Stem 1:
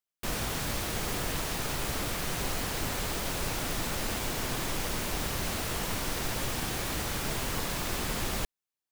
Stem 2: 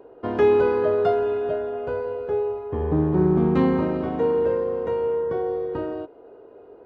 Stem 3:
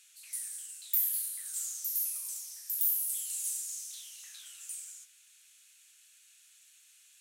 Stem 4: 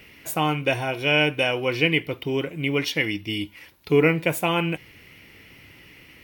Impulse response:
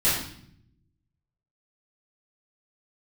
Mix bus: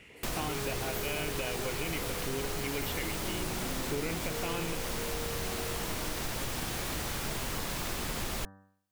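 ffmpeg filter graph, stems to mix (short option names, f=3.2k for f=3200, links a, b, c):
-filter_complex "[0:a]bandreject=f=96.94:t=h:w=4,bandreject=f=193.88:t=h:w=4,bandreject=f=290.82:t=h:w=4,bandreject=f=387.76:t=h:w=4,bandreject=f=484.7:t=h:w=4,bandreject=f=581.64:t=h:w=4,bandreject=f=678.58:t=h:w=4,bandreject=f=775.52:t=h:w=4,bandreject=f=872.46:t=h:w=4,bandreject=f=969.4:t=h:w=4,bandreject=f=1.06634k:t=h:w=4,bandreject=f=1.16328k:t=h:w=4,bandreject=f=1.26022k:t=h:w=4,bandreject=f=1.35716k:t=h:w=4,bandreject=f=1.4541k:t=h:w=4,bandreject=f=1.55104k:t=h:w=4,bandreject=f=1.64798k:t=h:w=4,bandreject=f=1.74492k:t=h:w=4,bandreject=f=1.84186k:t=h:w=4,volume=3dB[a];[1:a]asoftclip=type=tanh:threshold=-23dB,adelay=100,volume=-9.5dB[b];[2:a]volume=-10.5dB[c];[3:a]lowpass=4.3k,alimiter=limit=-13dB:level=0:latency=1,volume=-5.5dB[d];[a][b][c][d]amix=inputs=4:normalize=0,acompressor=threshold=-34dB:ratio=2.5"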